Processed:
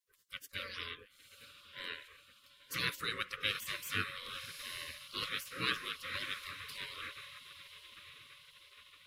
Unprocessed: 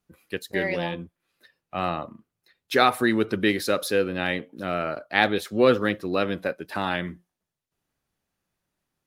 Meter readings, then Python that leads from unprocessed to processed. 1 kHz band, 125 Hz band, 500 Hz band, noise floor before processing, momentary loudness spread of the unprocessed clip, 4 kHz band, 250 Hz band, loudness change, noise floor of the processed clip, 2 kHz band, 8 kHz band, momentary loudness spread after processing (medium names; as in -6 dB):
-19.0 dB, -17.0 dB, -28.0 dB, -85 dBFS, 13 LU, -5.5 dB, -26.5 dB, -14.5 dB, -66 dBFS, -11.5 dB, -7.5 dB, 20 LU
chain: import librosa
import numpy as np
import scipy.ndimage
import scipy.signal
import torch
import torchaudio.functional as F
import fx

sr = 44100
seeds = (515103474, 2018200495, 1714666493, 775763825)

y = scipy.signal.sosfilt(scipy.signal.cheby1(4, 1.0, [500.0, 1100.0], 'bandstop', fs=sr, output='sos'), x)
y = fx.echo_diffused(y, sr, ms=933, feedback_pct=59, wet_db=-13.5)
y = fx.spec_gate(y, sr, threshold_db=-20, keep='weak')